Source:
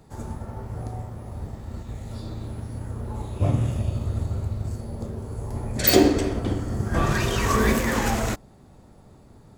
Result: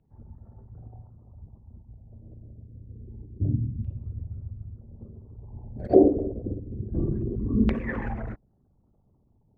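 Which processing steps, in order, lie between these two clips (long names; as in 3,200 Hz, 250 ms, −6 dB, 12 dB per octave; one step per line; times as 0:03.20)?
spectral envelope exaggerated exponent 2
auto-filter low-pass saw down 0.26 Hz 240–2,800 Hz
expander for the loud parts 1.5 to 1, over −37 dBFS
level −1 dB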